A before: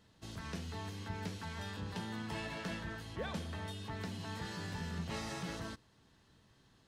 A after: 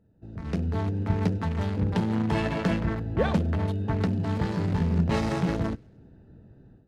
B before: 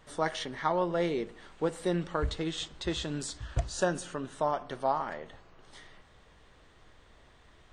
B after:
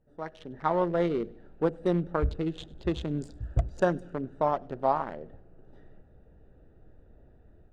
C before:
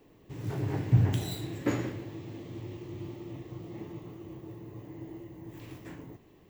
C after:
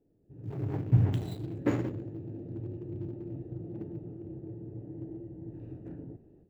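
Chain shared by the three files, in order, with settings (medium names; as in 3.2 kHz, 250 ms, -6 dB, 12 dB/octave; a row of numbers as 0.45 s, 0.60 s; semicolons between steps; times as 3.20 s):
local Wiener filter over 41 samples; treble shelf 2.8 kHz -10 dB; level rider gain up to 13.5 dB; feedback echo behind a high-pass 100 ms, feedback 51%, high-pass 2.1 kHz, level -23.5 dB; peak normalisation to -12 dBFS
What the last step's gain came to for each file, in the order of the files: +4.0 dB, -8.0 dB, -10.5 dB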